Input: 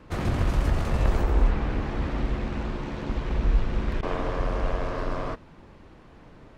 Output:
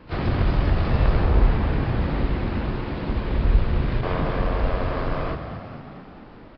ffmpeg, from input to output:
ffmpeg -i in.wav -filter_complex "[0:a]asplit=3[link_01][link_02][link_03];[link_02]asetrate=66075,aresample=44100,atempo=0.66742,volume=-16dB[link_04];[link_03]asetrate=88200,aresample=44100,atempo=0.5,volume=-15dB[link_05];[link_01][link_04][link_05]amix=inputs=3:normalize=0,aresample=11025,aresample=44100,asplit=9[link_06][link_07][link_08][link_09][link_10][link_11][link_12][link_13][link_14];[link_07]adelay=221,afreqshift=39,volume=-9.5dB[link_15];[link_08]adelay=442,afreqshift=78,volume=-13.7dB[link_16];[link_09]adelay=663,afreqshift=117,volume=-17.8dB[link_17];[link_10]adelay=884,afreqshift=156,volume=-22dB[link_18];[link_11]adelay=1105,afreqshift=195,volume=-26.1dB[link_19];[link_12]adelay=1326,afreqshift=234,volume=-30.3dB[link_20];[link_13]adelay=1547,afreqshift=273,volume=-34.4dB[link_21];[link_14]adelay=1768,afreqshift=312,volume=-38.6dB[link_22];[link_06][link_15][link_16][link_17][link_18][link_19][link_20][link_21][link_22]amix=inputs=9:normalize=0,volume=2.5dB" out.wav

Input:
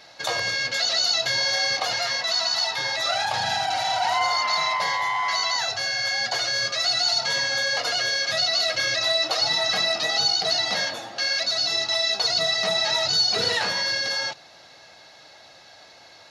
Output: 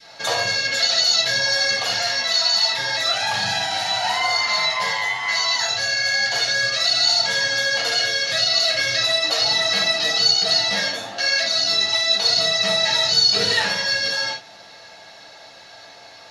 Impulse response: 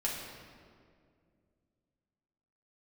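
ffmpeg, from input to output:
-filter_complex "[0:a]adynamicequalizer=threshold=0.0126:dfrequency=810:dqfactor=0.9:tfrequency=810:tqfactor=0.9:attack=5:release=100:ratio=0.375:range=3:mode=cutabove:tftype=bell[link_01];[1:a]atrim=start_sample=2205,atrim=end_sample=3969[link_02];[link_01][link_02]afir=irnorm=-1:irlink=0,volume=2.5dB"

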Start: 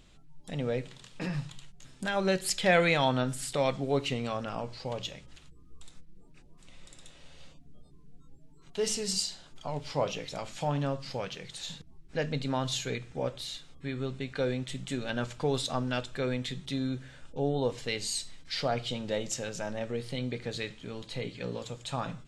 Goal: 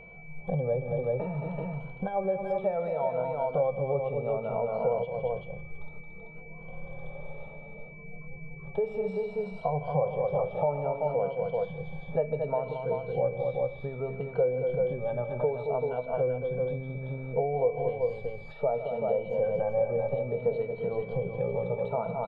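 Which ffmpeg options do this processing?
ffmpeg -i in.wav -filter_complex "[0:a]afftfilt=real='re*pow(10,12/40*sin(2*PI*(1.9*log(max(b,1)*sr/1024/100)/log(2)-(0.63)*(pts-256)/sr)))':imag='im*pow(10,12/40*sin(2*PI*(1.9*log(max(b,1)*sr/1024/100)/log(2)-(0.63)*(pts-256)/sr)))':win_size=1024:overlap=0.75,highshelf=frequency=4600:width_type=q:width=3:gain=-12.5,acontrast=67,asplit=2[link_01][link_02];[link_02]aecho=0:1:156|223|383:0.141|0.398|0.473[link_03];[link_01][link_03]amix=inputs=2:normalize=0,acompressor=threshold=-30dB:ratio=20,firequalizer=gain_entry='entry(100,0);entry(160,7);entry(290,-11);entry(460,12);entry(790,8);entry(2000,-27);entry(3800,-26);entry(13000,-27)':delay=0.05:min_phase=1,aeval=exprs='val(0)+0.00447*sin(2*PI*2300*n/s)':channel_layout=same,volume=-1.5dB" out.wav

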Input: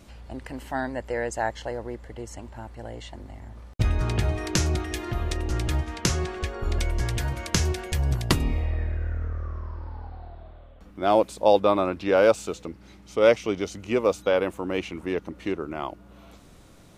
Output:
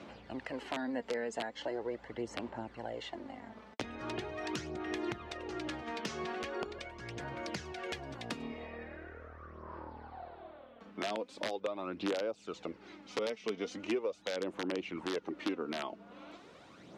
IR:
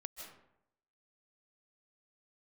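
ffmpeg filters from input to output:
-filter_complex "[0:a]aphaser=in_gain=1:out_gain=1:delay=4.6:decay=0.5:speed=0.41:type=sinusoidal,acompressor=threshold=-28dB:ratio=16,aeval=exprs='(mod(11.9*val(0)+1,2)-1)/11.9':channel_layout=same,highpass=250,lowpass=3900,acrossover=split=440|3000[link_01][link_02][link_03];[link_02]acompressor=threshold=-41dB:ratio=2.5[link_04];[link_01][link_04][link_03]amix=inputs=3:normalize=0"

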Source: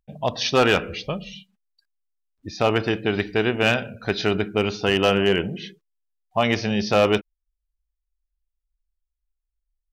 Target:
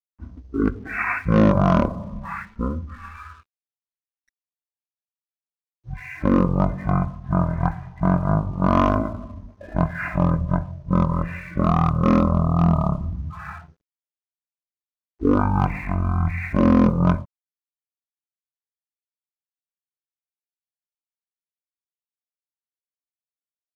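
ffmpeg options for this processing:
ffmpeg -i in.wav -af "asetrate=18434,aresample=44100,aeval=exprs='sgn(val(0))*max(abs(val(0))-0.002,0)':channel_layout=same,adynamicequalizer=threshold=0.0141:dfrequency=1500:dqfactor=1.3:tfrequency=1500:tqfactor=1.3:attack=5:release=100:ratio=0.375:range=2.5:mode=cutabove:tftype=bell,volume=1.5dB" out.wav

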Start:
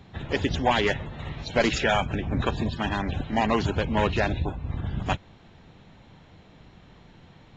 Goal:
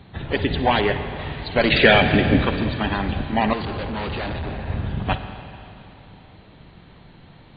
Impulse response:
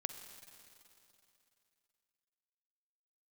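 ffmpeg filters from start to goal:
-filter_complex "[0:a]asettb=1/sr,asplit=3[link_01][link_02][link_03];[link_01]atrim=end=1.704[link_04];[link_02]atrim=start=1.7:end=2.37,asetpts=PTS-STARTPTS,afade=type=in:duration=0.004:curve=qsin,afade=type=out:start_time=0.666:duration=0.004:curve=qsin,equalizer=frequency=125:width_type=o:width=1:gain=4,equalizer=frequency=250:width_type=o:width=1:gain=8,equalizer=frequency=500:width_type=o:width=1:gain=8,equalizer=frequency=1000:width_type=o:width=1:gain=-5,equalizer=frequency=2000:width_type=o:width=1:gain=10,equalizer=frequency=4000:width_type=o:width=1:gain=6[link_05];[link_03]atrim=start=2.366[link_06];[link_04][link_05]acrossfade=duration=0.004:curve1=hsin:curve2=qsin[link_07];[link_07][link_06]acrossfade=duration=0.004:curve1=qsin:curve2=hsin[link_08];[1:a]atrim=start_sample=2205[link_09];[link_08][link_09]afir=irnorm=-1:irlink=0,acontrast=27,asplit=3[link_10][link_11][link_12];[link_10]afade=type=out:start_time=0.78:duration=0.02[link_13];[link_11]highshelf=frequency=3500:gain=-9,afade=type=in:start_time=0.78:duration=0.02,afade=type=out:start_time=1.18:duration=0.02[link_14];[link_12]afade=type=in:start_time=1.18:duration=0.02[link_15];[link_13][link_14][link_15]amix=inputs=3:normalize=0,asettb=1/sr,asplit=3[link_16][link_17][link_18];[link_16]atrim=end=3.534[link_19];[link_17]atrim=start=3.53:end=4.66,asetpts=PTS-STARTPTS,afade=type=in:duration=0.004:curve=qsin,afade=type=out:start_time=1.126:duration=0.004:curve=qsin,volume=25.5dB,asoftclip=hard,volume=-25.5dB[link_20];[link_18]atrim=start=4.656[link_21];[link_19][link_20]acrossfade=duration=0.004:curve1=hsin:curve2=qsin[link_22];[link_22][link_21]acrossfade=duration=0.004:curve1=qsin:curve2=hsin" -ar 16000 -c:a mp2 -b:a 48k

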